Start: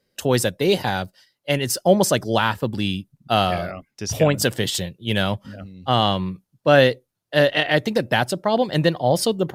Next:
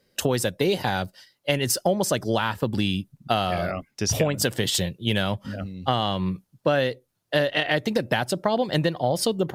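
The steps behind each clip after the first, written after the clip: compressor 6:1, threshold -24 dBFS, peak gain reduction 13.5 dB; gain +4.5 dB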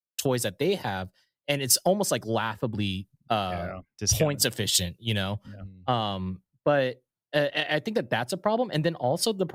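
three-band expander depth 100%; gain -3 dB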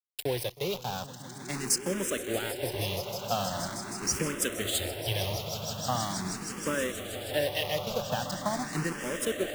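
bit-crush 5-bit; swelling echo 0.158 s, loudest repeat 8, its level -14.5 dB; endless phaser +0.42 Hz; gain -3.5 dB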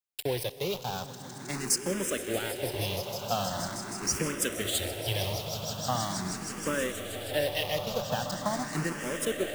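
reverb RT60 4.2 s, pre-delay 40 ms, DRR 15.5 dB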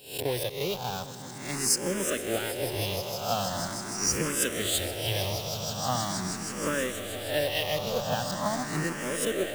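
spectral swells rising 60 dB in 0.48 s

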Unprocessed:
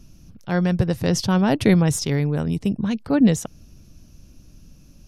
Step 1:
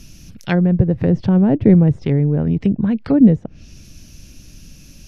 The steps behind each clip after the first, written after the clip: treble ducked by the level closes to 510 Hz, closed at -17.5 dBFS; resonant high shelf 1500 Hz +7 dB, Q 1.5; gain +6 dB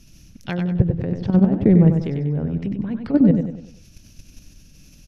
level quantiser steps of 12 dB; on a send: feedback echo 96 ms, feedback 41%, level -6.5 dB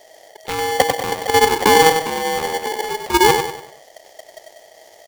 polarity switched at an audio rate 640 Hz; gain +1 dB

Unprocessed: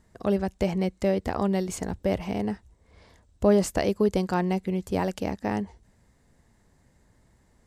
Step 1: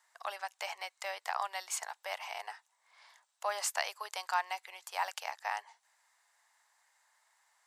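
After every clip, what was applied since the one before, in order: steep high-pass 810 Hz 36 dB/oct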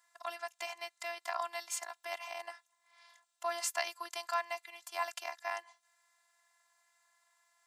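robotiser 343 Hz; gain +1 dB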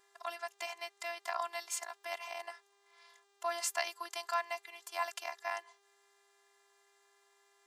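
buzz 400 Hz, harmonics 18, -73 dBFS -4 dB/oct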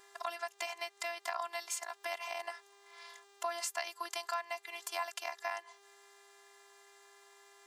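compressor 3:1, threshold -46 dBFS, peak gain reduction 13.5 dB; gain +9 dB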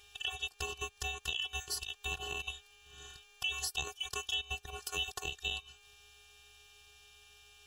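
band-swap scrambler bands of 2000 Hz; gain +1 dB

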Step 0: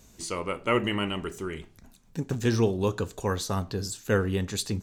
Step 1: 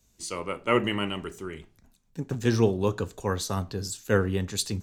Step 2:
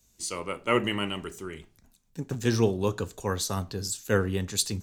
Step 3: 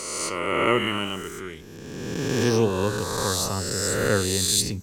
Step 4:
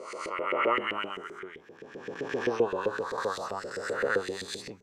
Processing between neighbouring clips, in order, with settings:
three-band expander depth 40%
high shelf 4000 Hz +6 dB; gain -1.5 dB
spectral swells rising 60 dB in 1.92 s
LFO band-pass saw up 7.7 Hz 410–2200 Hz; gain +2 dB

